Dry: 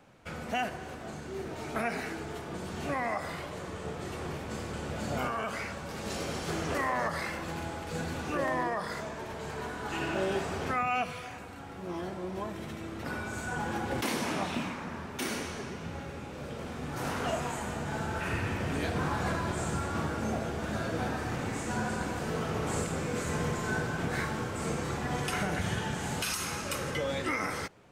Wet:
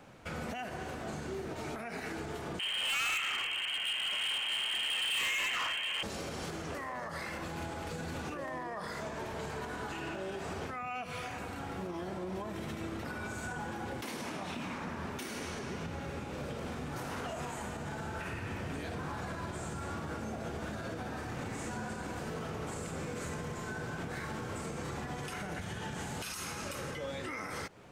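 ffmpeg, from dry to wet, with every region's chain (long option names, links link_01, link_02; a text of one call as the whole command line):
ffmpeg -i in.wav -filter_complex "[0:a]asettb=1/sr,asplit=3[link_01][link_02][link_03];[link_01]atrim=end=2.594[link_04];[link_02]atrim=start=2.59:end=6.03,asetpts=PTS-STARTPTS,afade=type=in:duration=0.004:curve=qsin,afade=type=out:start_time=3.436:duration=0.004:curve=qsin,lowpass=frequency=2800:width_type=q:width=0.5098,lowpass=frequency=2800:width_type=q:width=0.6013,lowpass=frequency=2800:width_type=q:width=0.9,lowpass=frequency=2800:width_type=q:width=2.563,afreqshift=-3300,acontrast=83,asoftclip=type=hard:threshold=-28.5dB[link_05];[link_03]atrim=start=6.026[link_06];[link_04][link_05]acrossfade=duration=0.004:curve1=hsin:curve2=qsin[link_07];[link_07][link_06]acrossfade=duration=0.004:curve1=qsin:curve2=hsin,acompressor=threshold=-33dB:ratio=6,alimiter=level_in=10.5dB:limit=-24dB:level=0:latency=1:release=177,volume=-10.5dB,volume=4dB" out.wav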